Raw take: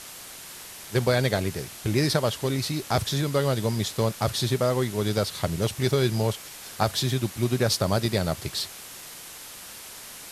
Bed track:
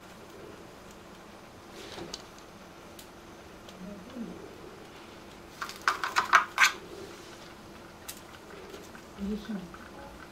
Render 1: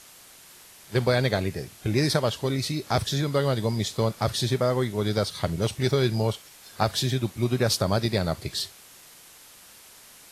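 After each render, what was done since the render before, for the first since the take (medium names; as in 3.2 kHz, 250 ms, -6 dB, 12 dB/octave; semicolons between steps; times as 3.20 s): noise print and reduce 8 dB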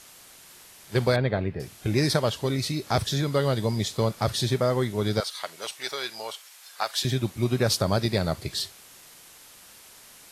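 1.16–1.60 s: distance through air 420 m; 5.20–7.05 s: high-pass 880 Hz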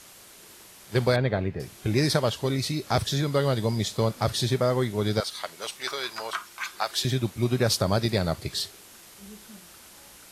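add bed track -12 dB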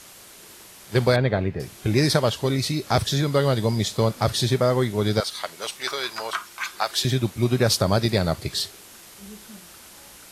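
trim +3.5 dB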